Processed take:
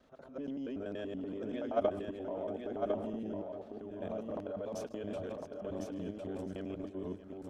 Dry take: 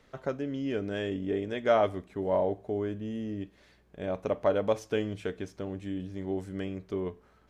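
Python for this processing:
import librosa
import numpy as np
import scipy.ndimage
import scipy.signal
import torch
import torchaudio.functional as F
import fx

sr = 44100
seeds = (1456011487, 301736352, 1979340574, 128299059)

p1 = fx.local_reverse(x, sr, ms=95.0)
p2 = fx.highpass(p1, sr, hz=67.0, slope=6)
p3 = fx.high_shelf(p2, sr, hz=2800.0, db=-5.5)
p4 = p3 + fx.echo_feedback(p3, sr, ms=629, feedback_pct=38, wet_db=-14.5, dry=0)
p5 = fx.transient(p4, sr, attack_db=-11, sustain_db=5)
p6 = fx.level_steps(p5, sr, step_db=13)
p7 = fx.graphic_eq_31(p6, sr, hz=(125, 250, 630, 2000), db=(-9, 5, 5, -8))
p8 = p7 + 10.0 ** (-4.5 / 20.0) * np.pad(p7, (int(1054 * sr / 1000.0), 0))[:len(p7)]
y = p8 * librosa.db_to_amplitude(-2.5)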